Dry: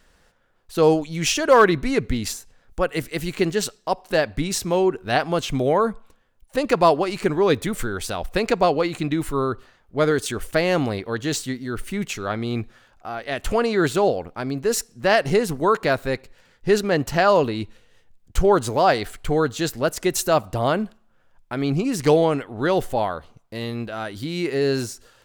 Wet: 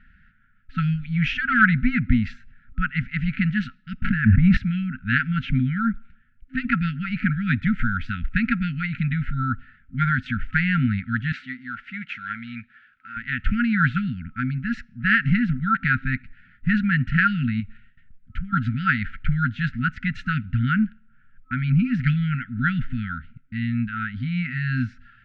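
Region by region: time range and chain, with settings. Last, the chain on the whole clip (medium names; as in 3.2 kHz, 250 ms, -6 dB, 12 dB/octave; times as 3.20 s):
4.02–4.57 s: tape spacing loss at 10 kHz 39 dB + level flattener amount 100%
11.32–13.17 s: CVSD coder 64 kbps + high-pass 1.1 kHz 6 dB/octave
17.60–18.53 s: gate with hold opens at -45 dBFS, closes at -52 dBFS + compression 2.5:1, threshold -34 dBFS
whole clip: FFT band-reject 260–1300 Hz; low-pass 2.2 kHz 24 dB/octave; trim +6 dB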